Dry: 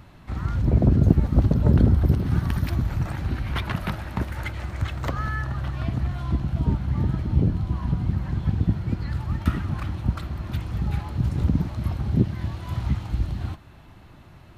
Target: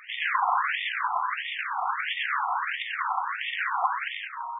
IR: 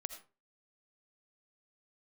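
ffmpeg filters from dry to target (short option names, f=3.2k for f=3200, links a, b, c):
-filter_complex "[0:a]equalizer=f=330:t=o:w=0.21:g=12.5,asetrate=139797,aresample=44100,aeval=exprs='val(0)+0.00501*sin(2*PI*940*n/s)':c=same,aeval=exprs='0.316*(cos(1*acos(clip(val(0)/0.316,-1,1)))-cos(1*PI/2))+0.0708*(cos(8*acos(clip(val(0)/0.316,-1,1)))-cos(8*PI/2))':c=same,asoftclip=type=tanh:threshold=-25dB,asplit=2[a][b];[b]adelay=169.1,volume=-10dB,highshelf=f=4k:g=-3.8[c];[a][c]amix=inputs=2:normalize=0,asplit=2[d][e];[1:a]atrim=start_sample=2205[f];[e][f]afir=irnorm=-1:irlink=0,volume=2dB[g];[d][g]amix=inputs=2:normalize=0,afftfilt=real='re*between(b*sr/1024,970*pow(2600/970,0.5+0.5*sin(2*PI*1.5*pts/sr))/1.41,970*pow(2600/970,0.5+0.5*sin(2*PI*1.5*pts/sr))*1.41)':imag='im*between(b*sr/1024,970*pow(2600/970,0.5+0.5*sin(2*PI*1.5*pts/sr))/1.41,970*pow(2600/970,0.5+0.5*sin(2*PI*1.5*pts/sr))*1.41)':win_size=1024:overlap=0.75,volume=6.5dB"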